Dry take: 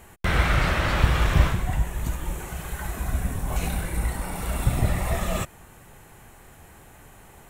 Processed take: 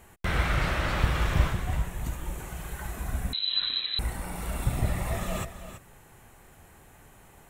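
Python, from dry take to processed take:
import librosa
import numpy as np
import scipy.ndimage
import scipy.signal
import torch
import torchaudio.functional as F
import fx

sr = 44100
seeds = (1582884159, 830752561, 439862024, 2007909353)

p1 = x + fx.echo_single(x, sr, ms=331, db=-11.5, dry=0)
p2 = fx.freq_invert(p1, sr, carrier_hz=4000, at=(3.33, 3.99))
y = F.gain(torch.from_numpy(p2), -5.0).numpy()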